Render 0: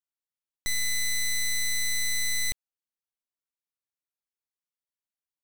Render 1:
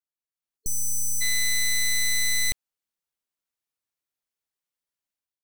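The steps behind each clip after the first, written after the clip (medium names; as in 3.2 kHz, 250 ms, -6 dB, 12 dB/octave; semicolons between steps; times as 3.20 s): spectral selection erased 0.57–1.21 s, 450–4300 Hz; level rider gain up to 10 dB; trim -6 dB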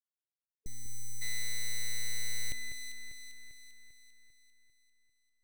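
local Wiener filter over 41 samples; echo whose repeats swap between lows and highs 198 ms, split 2.4 kHz, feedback 72%, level -8 dB; trim -8.5 dB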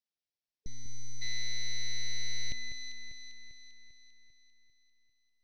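FFT filter 230 Hz 0 dB, 430 Hz -4 dB, 690 Hz -1 dB, 1.3 kHz -15 dB, 1.9 kHz -3 dB, 5.6 kHz +3 dB, 8.2 kHz -29 dB; trim +2 dB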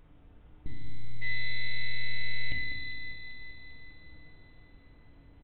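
added noise brown -60 dBFS; FDN reverb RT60 1.1 s, low-frequency decay 1.55×, high-frequency decay 0.9×, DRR 1 dB; resampled via 8 kHz; trim +4.5 dB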